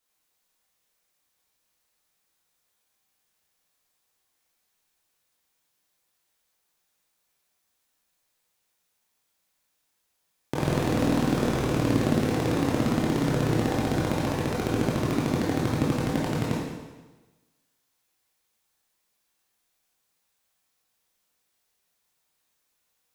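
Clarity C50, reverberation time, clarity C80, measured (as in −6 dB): −0.5 dB, 1.2 s, 2.5 dB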